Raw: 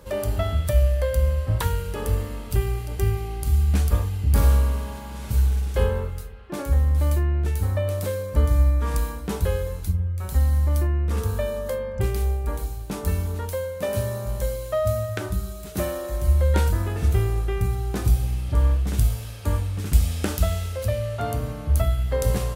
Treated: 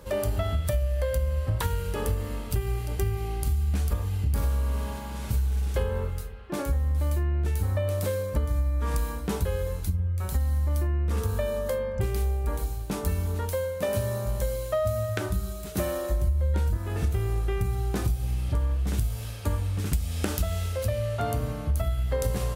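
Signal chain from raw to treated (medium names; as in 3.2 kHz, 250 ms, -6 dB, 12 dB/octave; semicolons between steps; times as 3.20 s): 16.10–16.77 s: bass shelf 330 Hz +7.5 dB; compression 8:1, threshold -22 dBFS, peak gain reduction 15.5 dB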